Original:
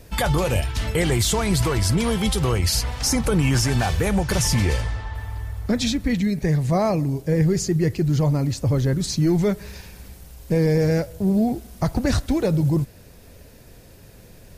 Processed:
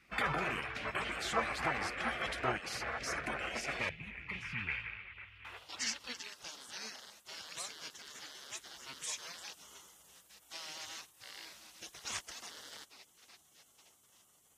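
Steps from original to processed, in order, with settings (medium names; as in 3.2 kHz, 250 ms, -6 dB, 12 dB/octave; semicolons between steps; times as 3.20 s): rattle on loud lows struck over -22 dBFS, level -31 dBFS; high-order bell 1.5 kHz +8.5 dB; feedback echo behind a band-pass 861 ms, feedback 36%, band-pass 810 Hz, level -11 dB; band-pass sweep 910 Hz -> 4.4 kHz, 3.38–6.32 s; spectral gate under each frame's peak -15 dB weak; 3.89–5.45 s: FFT filter 170 Hz 0 dB, 590 Hz -21 dB, 1 kHz -20 dB, 2.4 kHz -4 dB, 5.6 kHz -23 dB; trim +4.5 dB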